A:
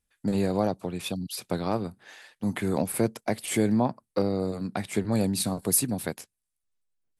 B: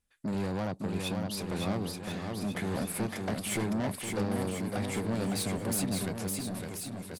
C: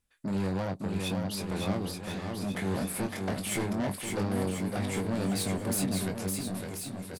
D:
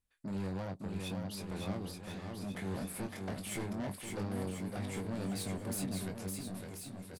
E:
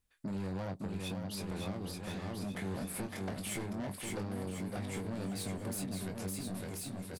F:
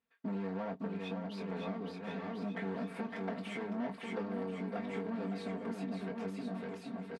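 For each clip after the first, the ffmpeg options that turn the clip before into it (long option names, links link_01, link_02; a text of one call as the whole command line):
ffmpeg -i in.wav -filter_complex "[0:a]highshelf=frequency=11000:gain=-7,asoftclip=type=tanh:threshold=-29dB,asplit=2[link_01][link_02];[link_02]aecho=0:1:560|1036|1441|1785|2077:0.631|0.398|0.251|0.158|0.1[link_03];[link_01][link_03]amix=inputs=2:normalize=0" out.wav
ffmpeg -i in.wav -filter_complex "[0:a]areverse,acompressor=mode=upward:threshold=-44dB:ratio=2.5,areverse,asplit=2[link_01][link_02];[link_02]adelay=21,volume=-7dB[link_03];[link_01][link_03]amix=inputs=2:normalize=0" out.wav
ffmpeg -i in.wav -af "lowshelf=frequency=110:gain=4,volume=-8.5dB" out.wav
ffmpeg -i in.wav -af "acompressor=threshold=-40dB:ratio=6,volume=4.5dB" out.wav
ffmpeg -i in.wav -filter_complex "[0:a]asplit=2[link_01][link_02];[link_02]acrusher=bits=4:mode=log:mix=0:aa=0.000001,volume=-4dB[link_03];[link_01][link_03]amix=inputs=2:normalize=0,highpass=220,lowpass=2300,aecho=1:1:4.4:0.86,volume=-4dB" out.wav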